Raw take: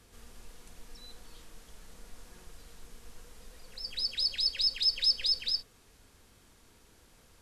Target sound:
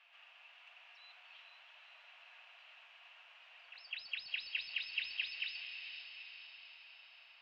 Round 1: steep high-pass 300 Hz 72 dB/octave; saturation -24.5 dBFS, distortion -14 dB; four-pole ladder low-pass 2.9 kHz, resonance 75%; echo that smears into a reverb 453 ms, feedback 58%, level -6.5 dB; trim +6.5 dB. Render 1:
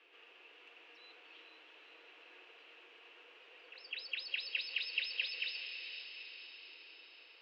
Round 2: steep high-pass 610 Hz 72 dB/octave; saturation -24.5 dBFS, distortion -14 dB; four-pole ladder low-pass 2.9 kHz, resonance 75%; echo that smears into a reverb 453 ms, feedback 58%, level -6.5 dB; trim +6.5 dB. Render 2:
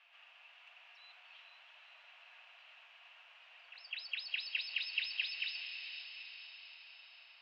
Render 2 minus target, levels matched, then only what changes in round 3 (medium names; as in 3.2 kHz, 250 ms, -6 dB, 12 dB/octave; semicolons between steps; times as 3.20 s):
saturation: distortion -8 dB
change: saturation -33.5 dBFS, distortion -6 dB